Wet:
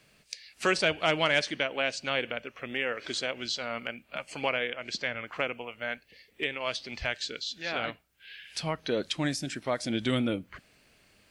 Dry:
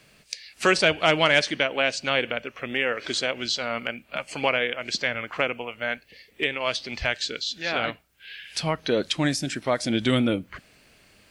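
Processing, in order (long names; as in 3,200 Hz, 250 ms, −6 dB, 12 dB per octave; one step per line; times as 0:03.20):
0:04.70–0:05.26: high-shelf EQ 9,600 Hz −8 dB
level −6 dB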